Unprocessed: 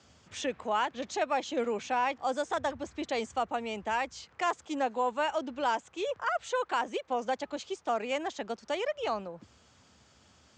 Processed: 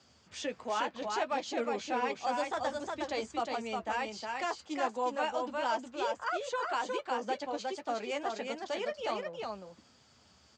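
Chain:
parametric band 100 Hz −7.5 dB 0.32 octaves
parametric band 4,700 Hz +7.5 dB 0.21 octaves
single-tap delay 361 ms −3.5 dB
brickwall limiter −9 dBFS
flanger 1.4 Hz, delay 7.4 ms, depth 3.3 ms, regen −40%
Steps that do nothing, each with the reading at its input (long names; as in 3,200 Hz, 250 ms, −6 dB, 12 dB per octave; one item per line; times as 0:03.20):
brickwall limiter −9 dBFS: peak of its input −15.0 dBFS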